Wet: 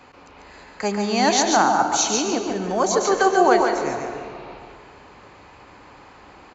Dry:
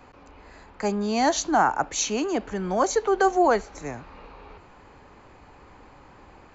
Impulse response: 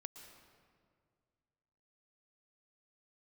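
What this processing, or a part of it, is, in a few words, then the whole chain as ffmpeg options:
PA in a hall: -filter_complex "[0:a]highpass=frequency=110:poles=1,equalizer=frequency=3800:width_type=o:width=2.2:gain=5.5,aecho=1:1:143:0.596[link_01];[1:a]atrim=start_sample=2205[link_02];[link_01][link_02]afir=irnorm=-1:irlink=0,asettb=1/sr,asplit=3[link_03][link_04][link_05];[link_03]atrim=end=1.624[link_06];[link_04]atrim=start=1.62:end=3.01,asetpts=PTS-STARTPTS,afade=type=in:duration=0.004:curve=qsin,afade=type=out:start_time=1.386:duration=0.004:curve=qsin,equalizer=frequency=2100:width_type=o:width=1.4:gain=-6[link_07];[link_05]atrim=start=3.006[link_08];[link_06][link_07]acrossfade=duration=0.004:curve1=hsin:curve2=qsin[link_09];[link_09][link_08]acrossfade=duration=0.004:curve1=qsin:curve2=hsin,volume=7.5dB"

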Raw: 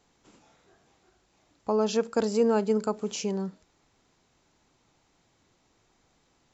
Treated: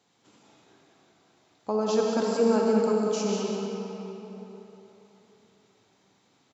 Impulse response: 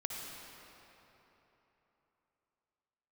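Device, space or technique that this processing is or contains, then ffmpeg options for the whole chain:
PA in a hall: -filter_complex "[0:a]highpass=frequency=100:width=0.5412,highpass=frequency=100:width=1.3066,equalizer=frequency=3700:width_type=o:width=0.61:gain=4,aecho=1:1:193:0.398[link_01];[1:a]atrim=start_sample=2205[link_02];[link_01][link_02]afir=irnorm=-1:irlink=0,asettb=1/sr,asplit=3[link_03][link_04][link_05];[link_03]atrim=end=1.764[link_06];[link_04]atrim=start=1.76:end=3.29,asetpts=PTS-STARTPTS,afade=type=in:duration=0.004:curve=qsin,afade=type=out:start_time=1.526:duration=0.004:curve=qsin,equalizer=frequency=3300:width_type=o:width=0.54:gain=-5.5[link_07];[link_05]atrim=start=3.286[link_08];[link_06][link_07]acrossfade=duration=0.004:curve1=hsin:curve2=qsin[link_09];[link_09][link_08]acrossfade=duration=0.004:curve1=qsin:curve2=hsin"

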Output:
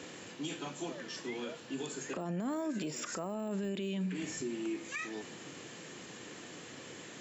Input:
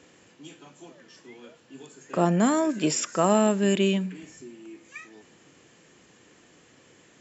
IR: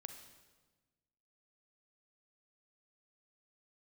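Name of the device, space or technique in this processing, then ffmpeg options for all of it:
broadcast voice chain: -af "highpass=99,deesser=0.95,acompressor=threshold=-38dB:ratio=3,equalizer=frequency=3900:width_type=o:width=0.47:gain=3,alimiter=level_in=13dB:limit=-24dB:level=0:latency=1:release=61,volume=-13dB,volume=8dB"

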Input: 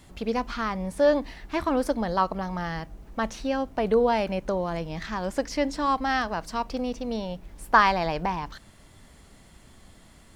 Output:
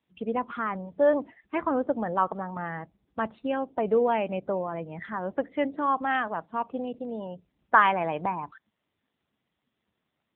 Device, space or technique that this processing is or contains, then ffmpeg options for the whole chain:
mobile call with aggressive noise cancelling: -af "highpass=frequency=180:poles=1,afftdn=noise_reduction=22:noise_floor=-38" -ar 8000 -c:a libopencore_amrnb -b:a 7950

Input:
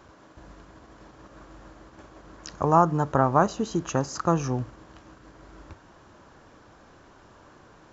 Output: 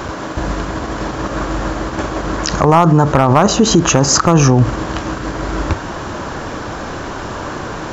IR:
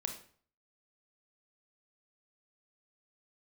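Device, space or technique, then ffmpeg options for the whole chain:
loud club master: -af "acompressor=threshold=-29dB:ratio=2,asoftclip=type=hard:threshold=-19.5dB,alimiter=level_in=29dB:limit=-1dB:release=50:level=0:latency=1,volume=-1dB"

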